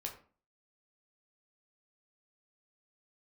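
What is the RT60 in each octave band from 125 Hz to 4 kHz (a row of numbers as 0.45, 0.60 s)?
0.45, 0.55, 0.40, 0.40, 0.35, 0.25 s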